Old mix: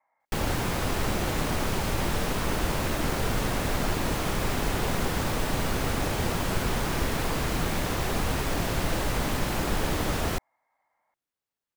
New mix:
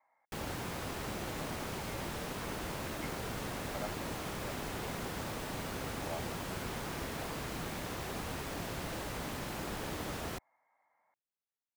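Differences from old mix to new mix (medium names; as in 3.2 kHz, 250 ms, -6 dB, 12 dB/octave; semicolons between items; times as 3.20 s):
background -10.5 dB; master: add high-pass 89 Hz 6 dB/octave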